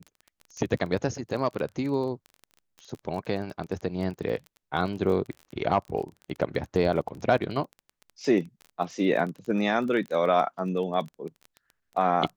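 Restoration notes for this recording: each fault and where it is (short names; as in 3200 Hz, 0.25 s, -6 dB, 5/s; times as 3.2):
crackle 20/s -34 dBFS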